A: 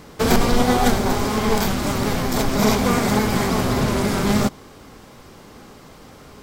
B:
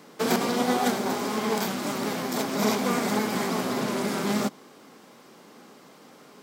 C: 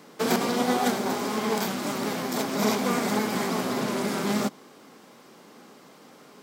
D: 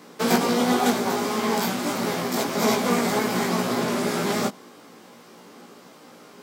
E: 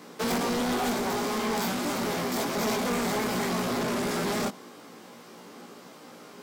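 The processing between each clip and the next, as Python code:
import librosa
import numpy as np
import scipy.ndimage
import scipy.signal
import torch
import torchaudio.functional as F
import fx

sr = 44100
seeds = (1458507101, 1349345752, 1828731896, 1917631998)

y1 = scipy.signal.sosfilt(scipy.signal.butter(4, 180.0, 'highpass', fs=sr, output='sos'), x)
y1 = y1 * librosa.db_to_amplitude(-6.0)
y2 = y1
y3 = fx.doubler(y2, sr, ms=17.0, db=-2.5)
y3 = y3 * librosa.db_to_amplitude(1.5)
y4 = 10.0 ** (-24.5 / 20.0) * np.tanh(y3 / 10.0 ** (-24.5 / 20.0))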